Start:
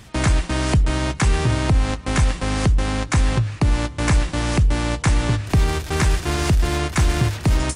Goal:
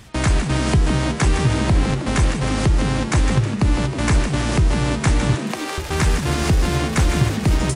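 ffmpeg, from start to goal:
-filter_complex "[0:a]asettb=1/sr,asplit=3[s0][s1][s2];[s0]atrim=end=5.354[s3];[s1]atrim=start=5.35:end=5.78,asetpts=PTS-STARTPTS,afade=t=in:d=0.004:c=qsin,afade=t=out:st=0.426:d=0.004:c=qsin,highpass=570[s4];[s2]atrim=start=5.776[s5];[s3][s4]acrossfade=d=0.004:c1=hsin:c2=qsin[s6];[s6][s5]acrossfade=d=0.004:c1=qsin:c2=hsin,asplit=7[s7][s8][s9][s10][s11][s12][s13];[s8]adelay=158,afreqshift=87,volume=0.376[s14];[s9]adelay=316,afreqshift=174,volume=0.202[s15];[s10]adelay=474,afreqshift=261,volume=0.11[s16];[s11]adelay=632,afreqshift=348,volume=0.0589[s17];[s12]adelay=790,afreqshift=435,volume=0.032[s18];[s13]adelay=948,afreqshift=522,volume=0.0172[s19];[s7][s14][s15][s16][s17][s18][s19]amix=inputs=7:normalize=0"

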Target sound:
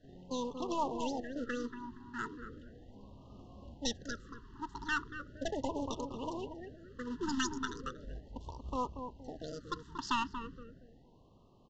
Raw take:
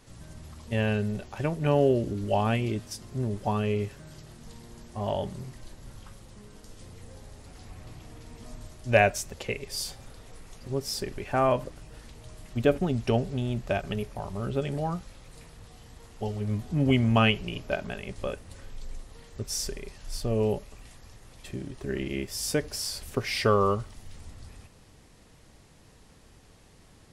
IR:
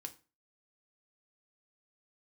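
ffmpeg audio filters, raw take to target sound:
-filter_complex "[0:a]acrossover=split=520[s0][s1];[s0]acrusher=bits=3:mode=log:mix=0:aa=0.000001[s2];[s2][s1]amix=inputs=2:normalize=0,asetrate=102312,aresample=44100,adynamicsmooth=sensitivity=6:basefreq=3400,aeval=exprs='(tanh(4.47*val(0)+0.6)-tanh(0.6))/4.47':c=same,asuperstop=centerf=2300:order=8:qfactor=3.1,asplit=2[s3][s4];[s4]adelay=234,lowpass=f=970:p=1,volume=0.501,asplit=2[s5][s6];[s6]adelay=234,lowpass=f=970:p=1,volume=0.41,asplit=2[s7][s8];[s8]adelay=234,lowpass=f=970:p=1,volume=0.41,asplit=2[s9][s10];[s10]adelay=234,lowpass=f=970:p=1,volume=0.41,asplit=2[s11][s12];[s12]adelay=234,lowpass=f=970:p=1,volume=0.41[s13];[s5][s7][s9][s11][s13]amix=inputs=5:normalize=0[s14];[s3][s14]amix=inputs=2:normalize=0,aresample=16000,aresample=44100,afftfilt=real='re*(1-between(b*sr/1024,580*pow(1800/580,0.5+0.5*sin(2*PI*0.37*pts/sr))/1.41,580*pow(1800/580,0.5+0.5*sin(2*PI*0.37*pts/sr))*1.41))':imag='im*(1-between(b*sr/1024,580*pow(1800/580,0.5+0.5*sin(2*PI*0.37*pts/sr))/1.41,580*pow(1800/580,0.5+0.5*sin(2*PI*0.37*pts/sr))*1.41))':win_size=1024:overlap=0.75,volume=0.531"

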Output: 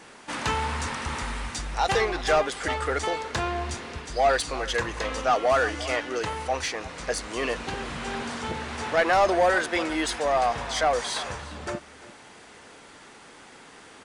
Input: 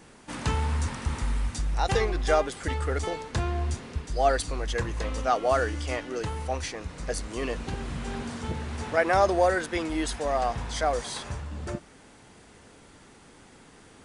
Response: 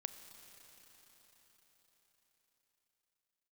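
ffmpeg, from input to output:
-filter_complex "[0:a]aecho=1:1:347:0.119,asplit=2[s0][s1];[s1]highpass=f=720:p=1,volume=6.31,asoftclip=type=tanh:threshold=0.335[s2];[s0][s2]amix=inputs=2:normalize=0,lowpass=f=4900:p=1,volume=0.501,volume=0.75"

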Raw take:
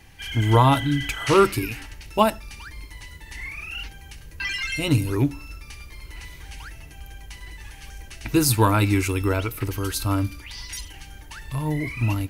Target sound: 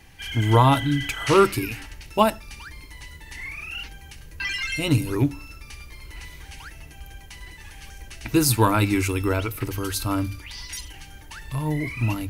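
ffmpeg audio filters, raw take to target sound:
-af "bandreject=f=50:t=h:w=6,bandreject=f=100:t=h:w=6"

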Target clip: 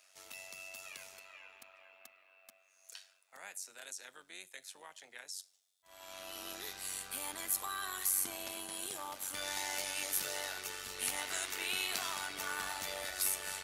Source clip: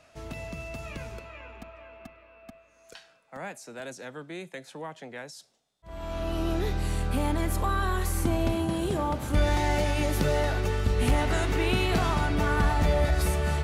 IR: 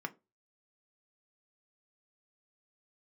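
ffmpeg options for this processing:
-filter_complex "[0:a]aderivative,tremolo=f=95:d=0.71,asplit=2[s0][s1];[1:a]atrim=start_sample=2205[s2];[s1][s2]afir=irnorm=-1:irlink=0,volume=0.158[s3];[s0][s3]amix=inputs=2:normalize=0,volume=1.88"

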